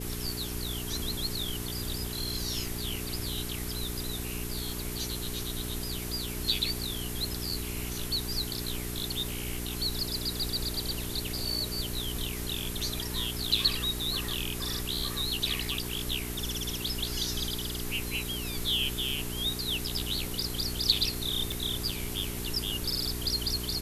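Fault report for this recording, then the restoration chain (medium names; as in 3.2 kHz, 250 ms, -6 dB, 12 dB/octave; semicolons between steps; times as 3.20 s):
hum 60 Hz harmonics 7 -38 dBFS
21.52 s: pop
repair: de-click; de-hum 60 Hz, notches 7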